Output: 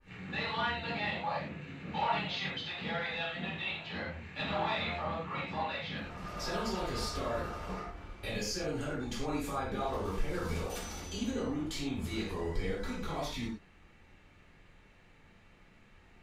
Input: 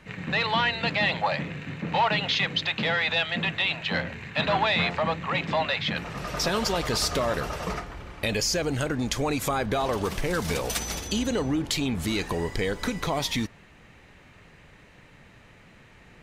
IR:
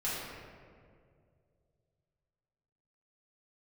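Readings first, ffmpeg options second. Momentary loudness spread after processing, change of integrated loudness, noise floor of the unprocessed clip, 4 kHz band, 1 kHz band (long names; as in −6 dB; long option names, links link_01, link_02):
7 LU, −10.0 dB, −53 dBFS, −12.0 dB, −8.0 dB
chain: -filter_complex "[1:a]atrim=start_sample=2205,afade=type=out:start_time=0.28:duration=0.01,atrim=end_sample=12789,asetrate=79380,aresample=44100[link_01];[0:a][link_01]afir=irnorm=-1:irlink=0,adynamicequalizer=threshold=0.0112:dfrequency=1900:dqfactor=0.7:tfrequency=1900:tqfactor=0.7:attack=5:release=100:ratio=0.375:range=2:mode=cutabove:tftype=highshelf,volume=-9dB"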